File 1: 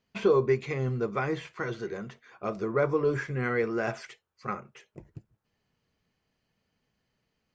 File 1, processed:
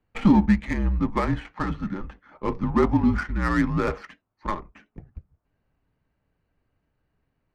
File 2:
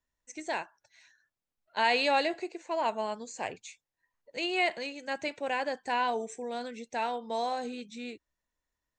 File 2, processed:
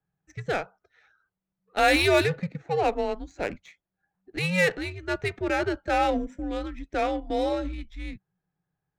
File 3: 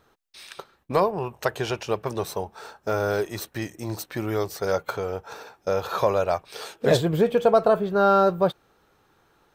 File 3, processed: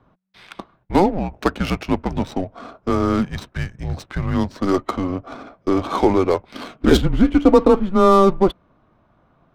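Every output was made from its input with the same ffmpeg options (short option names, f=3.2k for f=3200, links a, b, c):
-af "adynamicsmooth=sensitivity=6:basefreq=1.8k,afreqshift=-190,volume=6dB"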